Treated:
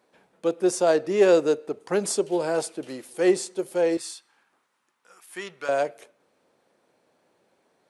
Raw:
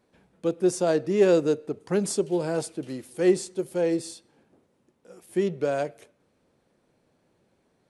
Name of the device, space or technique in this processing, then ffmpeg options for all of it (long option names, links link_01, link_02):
filter by subtraction: -filter_complex "[0:a]asplit=2[link_01][link_02];[link_02]lowpass=730,volume=-1[link_03];[link_01][link_03]amix=inputs=2:normalize=0,asettb=1/sr,asplit=3[link_04][link_05][link_06];[link_04]atrim=end=3.974[link_07];[link_05]atrim=start=3.97:end=5.69,asetpts=PTS-STARTPTS,afade=type=in:duration=0.004:curve=qsin,afade=type=out:start_time=1.716:duration=0.004:curve=qsin,lowshelf=frequency=800:width_type=q:width=1.5:gain=-12.5[link_08];[link_06]atrim=start=5.686[link_09];[link_07][link_08]acrossfade=duration=0.004:curve1=hsin:curve2=qsin[link_10];[link_10][link_09]acrossfade=duration=0.004:curve1=qsin:curve2=hsin,volume=3dB"